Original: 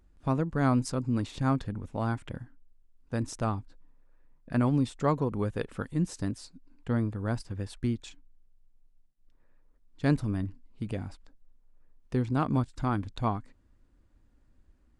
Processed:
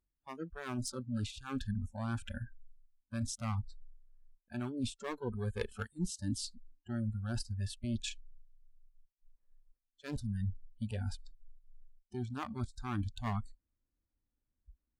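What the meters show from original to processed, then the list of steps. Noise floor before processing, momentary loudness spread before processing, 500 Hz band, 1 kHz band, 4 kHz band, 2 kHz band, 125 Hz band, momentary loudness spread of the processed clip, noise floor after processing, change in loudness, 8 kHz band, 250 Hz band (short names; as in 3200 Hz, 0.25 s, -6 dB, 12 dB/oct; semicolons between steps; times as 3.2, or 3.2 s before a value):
-64 dBFS, 12 LU, -11.0 dB, -11.5 dB, +1.0 dB, -6.5 dB, -7.5 dB, 8 LU, under -85 dBFS, -8.5 dB, +1.0 dB, -9.5 dB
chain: one-sided clip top -31.5 dBFS, bottom -17.5 dBFS; dynamic EQ 720 Hz, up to -5 dB, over -44 dBFS, Q 1.2; reverse; compressor 5:1, threshold -39 dBFS, peak gain reduction 15 dB; reverse; spectral noise reduction 29 dB; gain +7 dB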